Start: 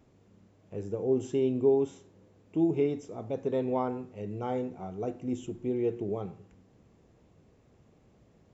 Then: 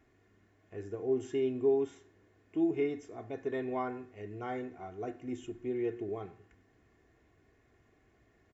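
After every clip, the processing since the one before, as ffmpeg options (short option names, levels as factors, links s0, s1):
-af "equalizer=f=1800:w=1.8:g=13.5,aecho=1:1:2.8:0.58,volume=0.447"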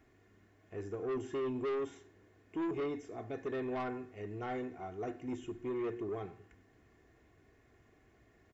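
-filter_complex "[0:a]acrossover=split=2600[s0][s1];[s0]asoftclip=type=tanh:threshold=0.02[s2];[s1]alimiter=level_in=33.5:limit=0.0631:level=0:latency=1,volume=0.0299[s3];[s2][s3]amix=inputs=2:normalize=0,volume=1.19"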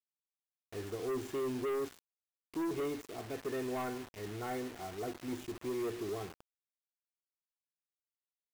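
-af "acrusher=bits=7:mix=0:aa=0.000001"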